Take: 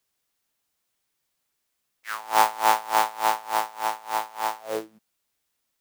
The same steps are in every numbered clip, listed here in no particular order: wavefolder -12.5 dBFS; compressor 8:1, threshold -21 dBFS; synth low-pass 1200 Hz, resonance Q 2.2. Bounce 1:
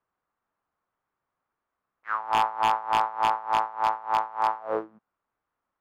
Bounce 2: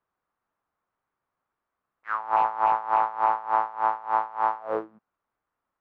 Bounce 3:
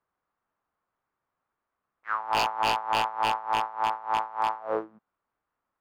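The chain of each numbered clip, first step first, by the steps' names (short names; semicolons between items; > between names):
compressor > synth low-pass > wavefolder; wavefolder > compressor > synth low-pass; synth low-pass > wavefolder > compressor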